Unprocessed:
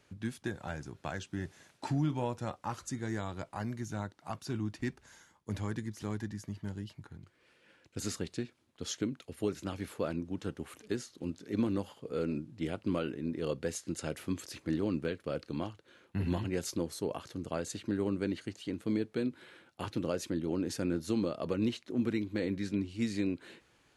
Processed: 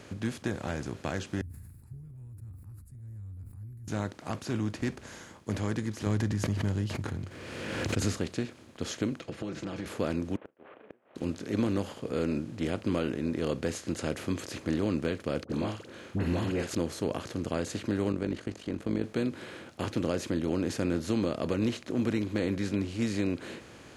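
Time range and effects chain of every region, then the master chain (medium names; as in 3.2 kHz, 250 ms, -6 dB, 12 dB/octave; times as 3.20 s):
1.41–3.88 s: inverse Chebyshev band-stop 270–6600 Hz, stop band 60 dB + decay stretcher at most 52 dB/s
6.06–8.18 s: peaking EQ 92 Hz +10.5 dB 1.5 oct + swell ahead of each attack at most 48 dB/s
9.20–9.86 s: comb 6 ms, depth 77% + compression, threshold -40 dBFS + distance through air 120 m
10.36–11.16 s: CVSD coder 16 kbps + ladder band-pass 720 Hz, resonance 35% + inverted gate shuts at -47 dBFS, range -40 dB
15.44–16.75 s: doubling 47 ms -10 dB + phase dispersion highs, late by 59 ms, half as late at 1 kHz
18.12–19.04 s: treble shelf 2.1 kHz -9 dB + AM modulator 48 Hz, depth 55%
whole clip: spectral levelling over time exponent 0.6; treble shelf 6.1 kHz -6 dB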